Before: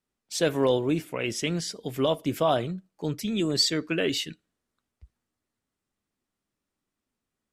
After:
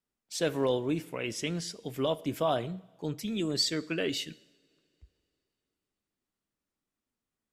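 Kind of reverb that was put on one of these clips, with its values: two-slope reverb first 0.9 s, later 3.3 s, from -19 dB, DRR 18.5 dB; gain -5 dB

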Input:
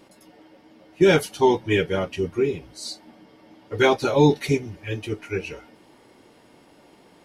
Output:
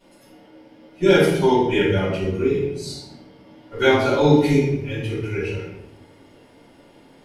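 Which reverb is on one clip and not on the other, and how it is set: shoebox room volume 280 m³, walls mixed, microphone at 6.7 m; gain -13.5 dB

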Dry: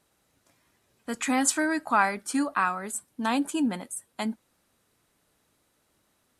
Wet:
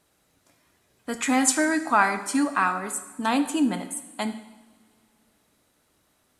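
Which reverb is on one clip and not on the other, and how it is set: two-slope reverb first 0.88 s, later 2.8 s, from -18 dB, DRR 8 dB; gain +2.5 dB

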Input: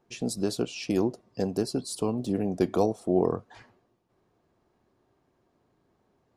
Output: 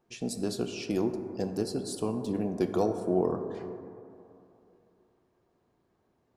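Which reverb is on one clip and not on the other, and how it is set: plate-style reverb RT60 2.8 s, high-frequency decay 0.25×, DRR 6.5 dB; gain -3.5 dB

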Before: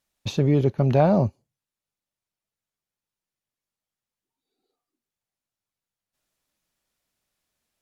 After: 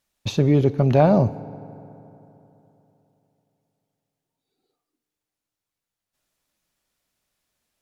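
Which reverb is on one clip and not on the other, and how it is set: FDN reverb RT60 3.3 s, high-frequency decay 0.5×, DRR 16.5 dB; gain +2.5 dB

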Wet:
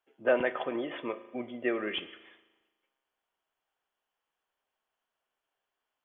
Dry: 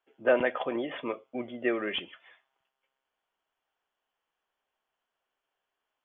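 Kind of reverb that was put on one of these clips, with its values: spring tank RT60 1.2 s, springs 37 ms, chirp 55 ms, DRR 13.5 dB; gain -2 dB

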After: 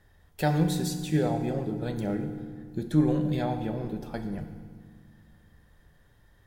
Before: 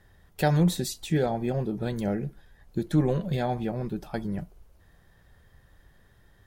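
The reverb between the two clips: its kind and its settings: FDN reverb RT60 1.8 s, low-frequency decay 1.45×, high-frequency decay 0.8×, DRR 6 dB; gain -3 dB

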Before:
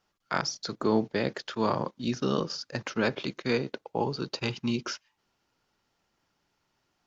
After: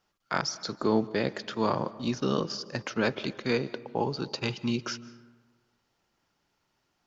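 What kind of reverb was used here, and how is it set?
digital reverb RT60 1.4 s, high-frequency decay 0.45×, pre-delay 0.115 s, DRR 18 dB

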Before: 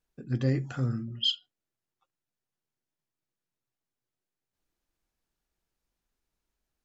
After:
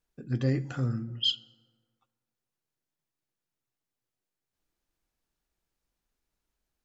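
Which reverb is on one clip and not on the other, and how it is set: FDN reverb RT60 1.9 s, low-frequency decay 0.8×, high-frequency decay 0.45×, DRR 18 dB

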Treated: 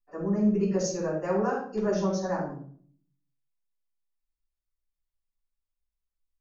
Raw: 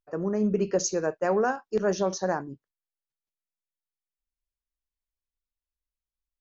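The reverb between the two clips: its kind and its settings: shoebox room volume 560 m³, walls furnished, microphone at 9.5 m; gain -15 dB

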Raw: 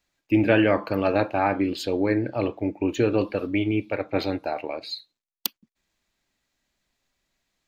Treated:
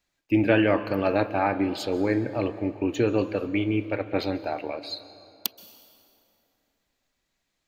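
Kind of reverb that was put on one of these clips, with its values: plate-style reverb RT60 2.9 s, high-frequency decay 0.65×, pre-delay 0.115 s, DRR 14 dB; gain -1.5 dB

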